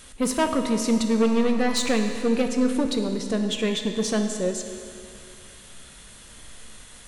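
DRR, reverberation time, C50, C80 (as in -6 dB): 4.5 dB, 2.5 s, 6.0 dB, 7.0 dB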